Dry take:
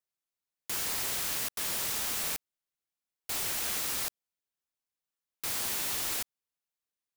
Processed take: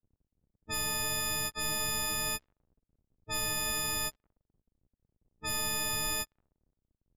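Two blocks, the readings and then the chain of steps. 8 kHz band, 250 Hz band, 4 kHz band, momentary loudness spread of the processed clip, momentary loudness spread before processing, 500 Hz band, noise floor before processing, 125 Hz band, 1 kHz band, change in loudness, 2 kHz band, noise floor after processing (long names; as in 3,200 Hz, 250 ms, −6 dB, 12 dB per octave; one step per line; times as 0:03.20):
0.0 dB, +4.5 dB, +2.0 dB, 7 LU, 8 LU, +4.0 dB, below −85 dBFS, +8.0 dB, +3.5 dB, −1.0 dB, +3.5 dB, below −85 dBFS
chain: every partial snapped to a pitch grid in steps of 6 semitones
surface crackle 58 per second −48 dBFS
low-pass that shuts in the quiet parts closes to 350 Hz, open at −14 dBFS
in parallel at −5 dB: hard clipping −21 dBFS, distortion −9 dB
on the sum: RIAA equalisation playback
level −5.5 dB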